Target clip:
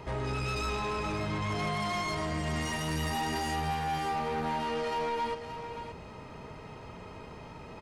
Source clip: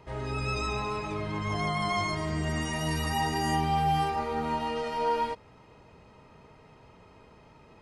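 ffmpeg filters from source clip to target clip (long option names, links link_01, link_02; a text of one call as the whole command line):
ffmpeg -i in.wav -af "acompressor=threshold=-37dB:ratio=2.5,asoftclip=type=tanh:threshold=-37dB,aecho=1:1:575:0.335,volume=8.5dB" out.wav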